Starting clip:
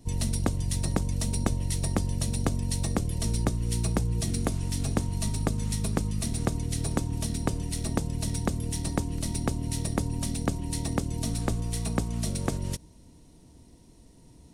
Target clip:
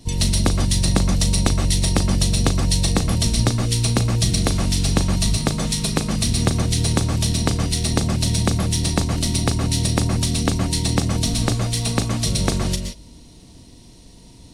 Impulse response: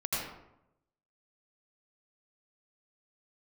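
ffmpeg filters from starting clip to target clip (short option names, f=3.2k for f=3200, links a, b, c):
-filter_complex "[0:a]equalizer=f=3.9k:t=o:w=1.5:g=9.5,asplit=2[a][b];[1:a]atrim=start_sample=2205,atrim=end_sample=6615,adelay=38[c];[b][c]afir=irnorm=-1:irlink=0,volume=-9dB[d];[a][d]amix=inputs=2:normalize=0,volume=6.5dB"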